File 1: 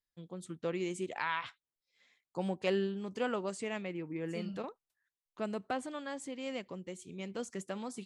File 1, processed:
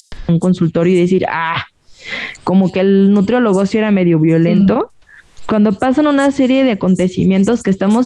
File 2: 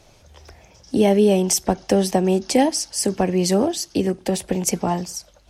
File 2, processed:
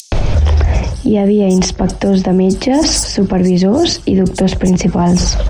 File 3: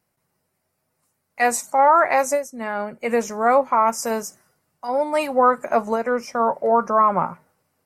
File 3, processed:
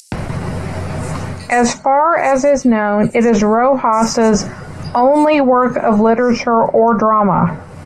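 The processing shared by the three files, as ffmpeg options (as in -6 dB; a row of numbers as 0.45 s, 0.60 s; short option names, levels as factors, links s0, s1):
-filter_complex "[0:a]lowpass=f=9600:w=0.5412,lowpass=f=9600:w=1.3066,aemphasis=mode=reproduction:type=bsi,acrossover=split=110|6700[s0][s1][s2];[s2]asoftclip=type=tanh:threshold=0.0178[s3];[s0][s1][s3]amix=inputs=3:normalize=0,acompressor=mode=upward:threshold=0.02:ratio=2.5,acrossover=split=5900[s4][s5];[s4]adelay=120[s6];[s6][s5]amix=inputs=2:normalize=0,areverse,acompressor=threshold=0.0398:ratio=20,areverse,alimiter=level_in=42.2:limit=0.891:release=50:level=0:latency=1,volume=0.708"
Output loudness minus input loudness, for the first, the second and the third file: +25.5 LU, +7.5 LU, +7.0 LU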